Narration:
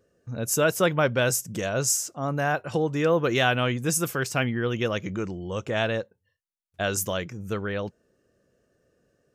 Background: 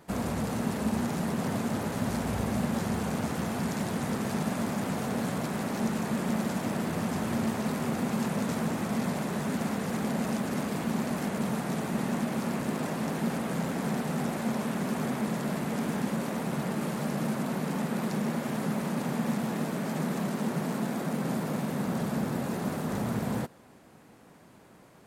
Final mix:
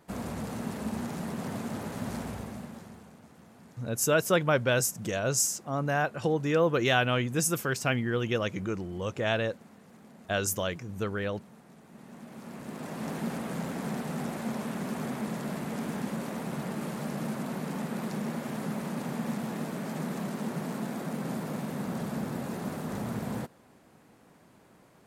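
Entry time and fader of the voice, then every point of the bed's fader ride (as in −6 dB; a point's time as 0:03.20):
3.50 s, −2.5 dB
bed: 0:02.21 −5 dB
0:03.19 −23 dB
0:11.82 −23 dB
0:13.09 −3.5 dB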